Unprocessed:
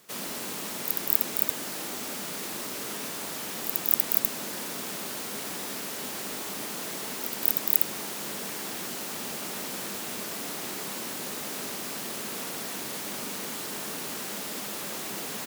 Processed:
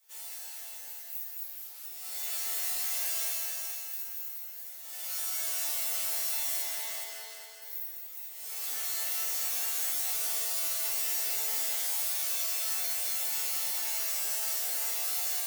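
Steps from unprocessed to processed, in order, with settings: high-pass 430 Hz 24 dB/octave; tilt EQ +3.5 dB/octave; level rider gain up to 8.5 dB; 9.36–10.04 s: crackle 300 per s -33 dBFS; chord resonator D3 major, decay 0.67 s; 6.62–7.62 s: distance through air 85 m; multi-head delay 209 ms, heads first and second, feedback 43%, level -6.5 dB; FDN reverb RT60 0.52 s, low-frequency decay 1.1×, high-frequency decay 1×, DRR 3 dB; 1.43–1.85 s: loudspeaker Doppler distortion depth 0.46 ms

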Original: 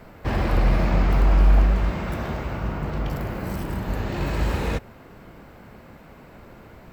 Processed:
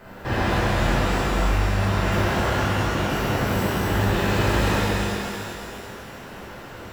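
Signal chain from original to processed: bass shelf 280 Hz -6 dB; band-stop 2.2 kHz, Q 10; on a send: thinning echo 242 ms, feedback 57%, level -9 dB; on the sum: compression, threshold -25 dBFS, peak gain reduction 8 dB; peaking EQ 1.7 kHz +2.5 dB; pitch-shifted reverb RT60 2.1 s, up +12 st, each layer -8 dB, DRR -7.5 dB

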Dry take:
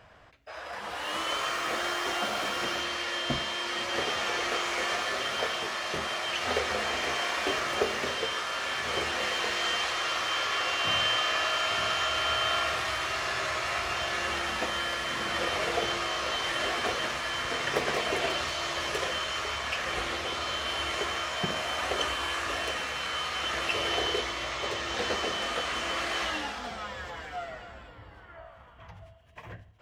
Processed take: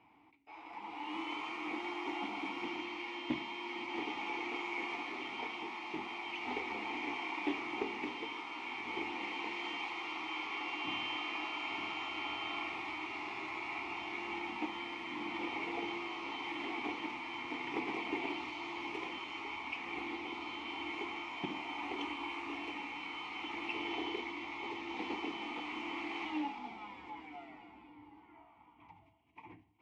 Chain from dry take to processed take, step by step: vowel filter u; loudspeaker Doppler distortion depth 0.15 ms; trim +6 dB

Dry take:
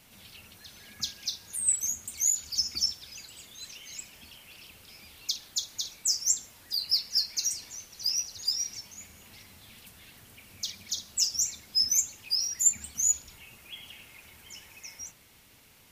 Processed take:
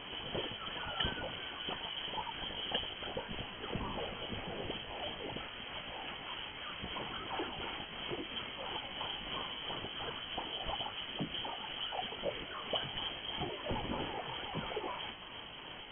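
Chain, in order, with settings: sawtooth pitch modulation +2 st, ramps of 346 ms; frequency inversion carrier 3.2 kHz; trim +14 dB

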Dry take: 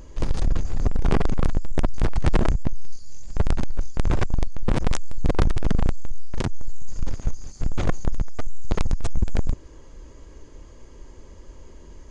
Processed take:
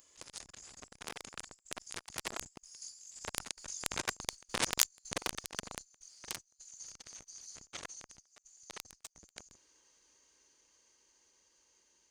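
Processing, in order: single-diode clipper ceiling -22 dBFS; Doppler pass-by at 4.38 s, 13 m/s, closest 12 m; differentiator; trim +13 dB

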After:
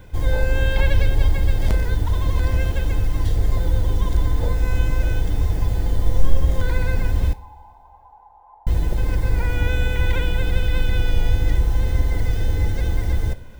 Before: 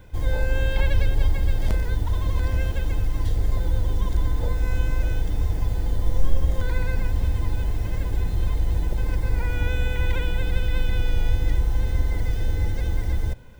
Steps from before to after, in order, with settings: 7.33–8.67 s: Butterworth band-pass 870 Hz, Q 4.9; on a send: reverberation, pre-delay 3 ms, DRR 13.5 dB; on the sum: trim +4 dB

